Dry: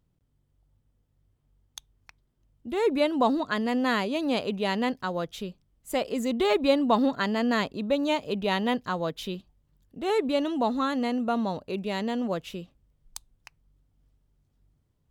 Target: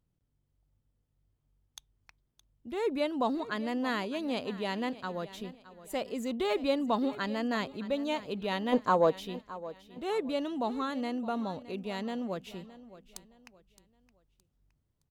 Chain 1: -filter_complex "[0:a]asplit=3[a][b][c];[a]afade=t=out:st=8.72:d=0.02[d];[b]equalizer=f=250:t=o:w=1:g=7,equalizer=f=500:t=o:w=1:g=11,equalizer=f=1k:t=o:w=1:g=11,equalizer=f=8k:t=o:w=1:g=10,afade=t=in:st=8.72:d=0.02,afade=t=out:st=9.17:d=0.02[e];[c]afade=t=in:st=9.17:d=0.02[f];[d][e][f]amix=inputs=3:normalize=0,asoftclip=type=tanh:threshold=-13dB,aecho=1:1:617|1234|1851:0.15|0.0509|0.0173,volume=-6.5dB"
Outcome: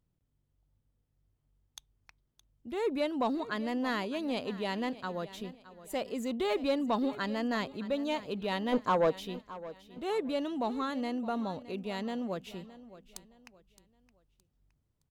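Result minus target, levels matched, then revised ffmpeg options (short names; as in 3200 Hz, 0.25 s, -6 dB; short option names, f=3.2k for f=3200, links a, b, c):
soft clip: distortion +14 dB
-filter_complex "[0:a]asplit=3[a][b][c];[a]afade=t=out:st=8.72:d=0.02[d];[b]equalizer=f=250:t=o:w=1:g=7,equalizer=f=500:t=o:w=1:g=11,equalizer=f=1k:t=o:w=1:g=11,equalizer=f=8k:t=o:w=1:g=10,afade=t=in:st=8.72:d=0.02,afade=t=out:st=9.17:d=0.02[e];[c]afade=t=in:st=9.17:d=0.02[f];[d][e][f]amix=inputs=3:normalize=0,asoftclip=type=tanh:threshold=-3.5dB,aecho=1:1:617|1234|1851:0.15|0.0509|0.0173,volume=-6.5dB"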